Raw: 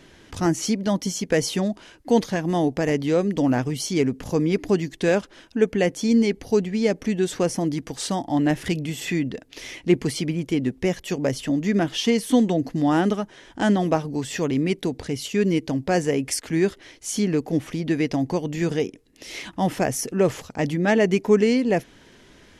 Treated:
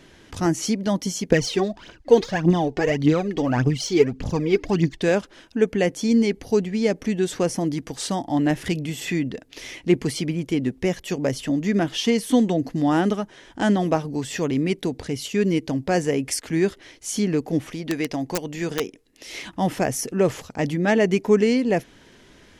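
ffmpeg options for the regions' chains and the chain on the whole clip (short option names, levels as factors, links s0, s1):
-filter_complex "[0:a]asettb=1/sr,asplit=3[s0][s1][s2];[s0]atrim=end=1.314[s3];[s1]atrim=start=1.31:end=5.02,asetpts=PTS-STARTPTS,afade=t=in:d=0.004:c=qsin,afade=t=out:st=3.706:d=0.004:c=qsin,lowpass=5800,aphaser=in_gain=1:out_gain=1:delay=2.8:decay=0.67:speed=1.7:type=triangular[s4];[s2]atrim=start=5.016[s5];[s3][s4]acrossfade=d=0.004:c1=hsin:c2=qsin[s6];[s6][s5]acrossfade=d=0.004:c1=qsin:c2=hsin,asettb=1/sr,asplit=3[s7][s8][s9];[s7]atrim=end=17.704[s10];[s8]atrim=start=17.7:end=19.33,asetpts=PTS-STARTPTS,afade=t=in:d=0.004:c=qsin,afade=t=out:st=1.626:d=0.004:c=qsin,equalizer=f=96:w=0.33:g=-6.5,aeval=exprs='(mod(5.96*val(0)+1,2)-1)/5.96':c=same[s11];[s9]atrim=start=19.326[s12];[s10][s11]acrossfade=d=0.004:c1=hsin:c2=qsin[s13];[s13][s12]acrossfade=d=0.004:c1=qsin:c2=hsin"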